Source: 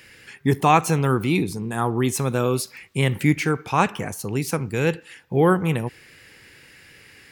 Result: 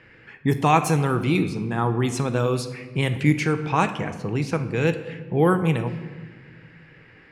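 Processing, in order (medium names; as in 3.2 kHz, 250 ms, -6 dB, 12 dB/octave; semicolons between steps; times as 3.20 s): level-controlled noise filter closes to 1.6 kHz, open at -14 dBFS; in parallel at -1 dB: compression, threshold -26 dBFS, peak gain reduction 14.5 dB; on the sum: reverberation RT60 1.4 s, pre-delay 6 ms, DRR 9 dB; trim -4 dB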